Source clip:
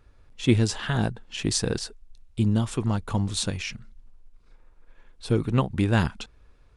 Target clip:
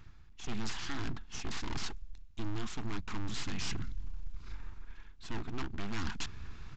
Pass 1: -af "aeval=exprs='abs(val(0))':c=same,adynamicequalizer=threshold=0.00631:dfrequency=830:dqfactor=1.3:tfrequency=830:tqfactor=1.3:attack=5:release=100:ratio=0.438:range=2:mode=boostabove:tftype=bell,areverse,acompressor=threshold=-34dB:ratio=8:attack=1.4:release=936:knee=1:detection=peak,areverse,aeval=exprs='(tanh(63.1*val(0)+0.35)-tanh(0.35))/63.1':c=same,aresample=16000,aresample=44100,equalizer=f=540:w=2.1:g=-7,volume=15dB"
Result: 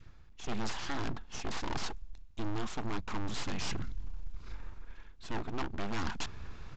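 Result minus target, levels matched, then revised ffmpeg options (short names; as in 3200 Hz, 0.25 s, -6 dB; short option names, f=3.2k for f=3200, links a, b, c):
500 Hz band +4.0 dB; 1000 Hz band +3.5 dB
-af "aeval=exprs='abs(val(0))':c=same,areverse,acompressor=threshold=-34dB:ratio=8:attack=1.4:release=936:knee=1:detection=peak,areverse,aeval=exprs='(tanh(63.1*val(0)+0.35)-tanh(0.35))/63.1':c=same,aresample=16000,aresample=44100,equalizer=f=540:w=2.1:g=-16,volume=15dB"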